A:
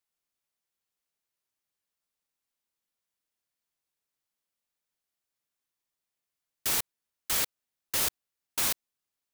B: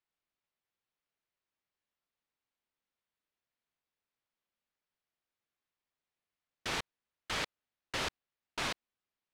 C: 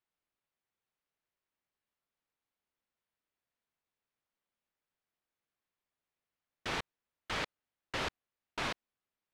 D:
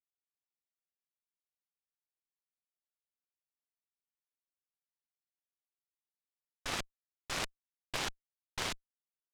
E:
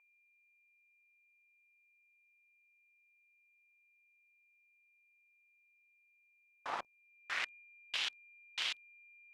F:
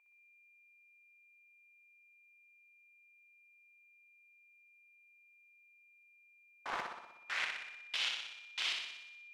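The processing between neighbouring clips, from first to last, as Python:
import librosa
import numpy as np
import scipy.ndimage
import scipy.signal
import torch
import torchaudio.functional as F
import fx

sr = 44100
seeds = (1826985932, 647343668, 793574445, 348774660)

y1 = scipy.signal.sosfilt(scipy.signal.butter(2, 3400.0, 'lowpass', fs=sr, output='sos'), x)
y2 = fx.high_shelf(y1, sr, hz=4600.0, db=-9.5)
y2 = y2 * 10.0 ** (1.0 / 20.0)
y3 = fx.cheby_harmonics(y2, sr, harmonics=(3, 6), levels_db=(-9, -15), full_scale_db=-23.0)
y3 = y3 * 10.0 ** (4.5 / 20.0)
y4 = fx.quant_dither(y3, sr, seeds[0], bits=10, dither='none')
y4 = y4 + 10.0 ** (-61.0 / 20.0) * np.sin(2.0 * np.pi * 2400.0 * np.arange(len(y4)) / sr)
y4 = fx.filter_sweep_bandpass(y4, sr, from_hz=940.0, to_hz=3000.0, start_s=6.9, end_s=7.66, q=2.2)
y4 = y4 * 10.0 ** (5.5 / 20.0)
y5 = fx.room_flutter(y4, sr, wall_m=10.5, rt60_s=0.9)
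y5 = fx.doppler_dist(y5, sr, depth_ms=0.43)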